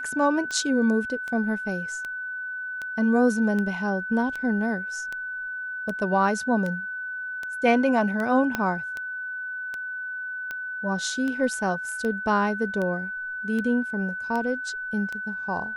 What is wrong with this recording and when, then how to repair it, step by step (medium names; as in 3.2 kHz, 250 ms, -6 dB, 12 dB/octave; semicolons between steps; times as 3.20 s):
tick 78 rpm -19 dBFS
whine 1.5 kHz -30 dBFS
8.55 s: pop -11 dBFS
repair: de-click; band-stop 1.5 kHz, Q 30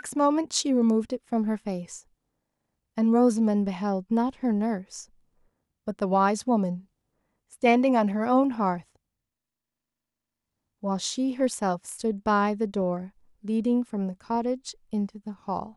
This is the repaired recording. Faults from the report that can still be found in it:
8.55 s: pop